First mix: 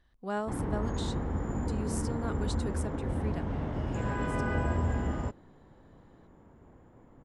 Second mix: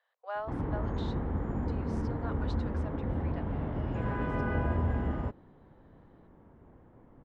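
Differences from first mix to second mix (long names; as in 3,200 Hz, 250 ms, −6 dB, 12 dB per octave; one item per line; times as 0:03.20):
speech: add Butterworth high-pass 470 Hz 96 dB per octave
master: add high-frequency loss of the air 250 metres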